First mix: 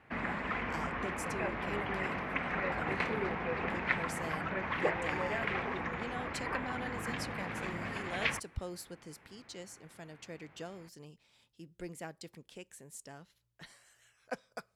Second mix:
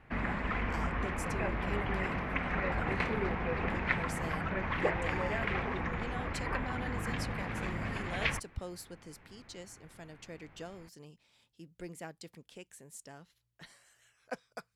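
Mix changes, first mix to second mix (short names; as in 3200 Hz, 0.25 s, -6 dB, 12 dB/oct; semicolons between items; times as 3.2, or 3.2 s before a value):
background: remove HPF 210 Hz 6 dB/oct; reverb: off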